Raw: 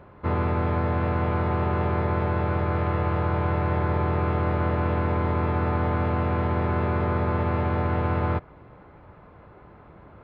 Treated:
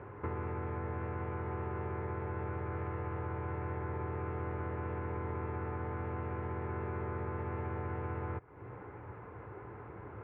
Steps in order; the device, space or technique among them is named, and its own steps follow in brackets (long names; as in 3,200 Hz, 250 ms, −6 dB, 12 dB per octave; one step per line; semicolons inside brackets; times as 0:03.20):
bass amplifier (downward compressor 5 to 1, threshold −38 dBFS, peak gain reduction 16 dB; loudspeaker in its box 88–2,300 Hz, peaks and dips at 110 Hz +6 dB, 160 Hz −9 dB, 230 Hz −7 dB, 420 Hz +4 dB, 620 Hz −9 dB, 1,200 Hz −3 dB)
level +3 dB